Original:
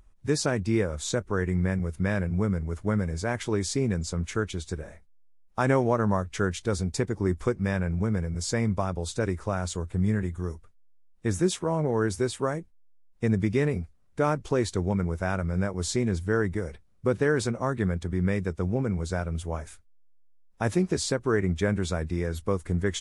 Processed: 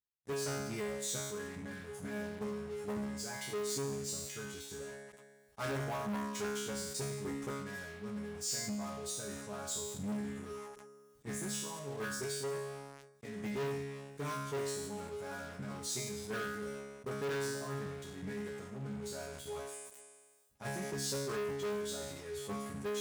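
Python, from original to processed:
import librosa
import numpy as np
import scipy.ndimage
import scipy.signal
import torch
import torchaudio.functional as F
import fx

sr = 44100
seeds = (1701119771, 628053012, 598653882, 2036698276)

y = fx.low_shelf(x, sr, hz=140.0, db=-7.0, at=(12.49, 13.44))
y = fx.level_steps(y, sr, step_db=12)
y = fx.resonator_bank(y, sr, root=49, chord='fifth', decay_s=0.83)
y = fx.leveller(y, sr, passes=5)
y = scipy.signal.sosfilt(scipy.signal.butter(4, 49.0, 'highpass', fs=sr, output='sos'), y)
y = fx.high_shelf(y, sr, hz=5800.0, db=8.5)
y = fx.sustainer(y, sr, db_per_s=36.0)
y = F.gain(torch.from_numpy(y), -4.0).numpy()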